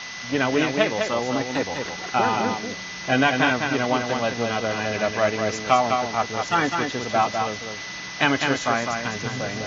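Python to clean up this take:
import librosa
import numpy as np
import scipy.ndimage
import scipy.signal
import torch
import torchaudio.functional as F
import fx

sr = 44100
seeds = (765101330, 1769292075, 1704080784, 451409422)

y = fx.notch(x, sr, hz=2000.0, q=30.0)
y = fx.noise_reduce(y, sr, print_start_s=7.7, print_end_s=8.2, reduce_db=30.0)
y = fx.fix_echo_inverse(y, sr, delay_ms=204, level_db=-5.0)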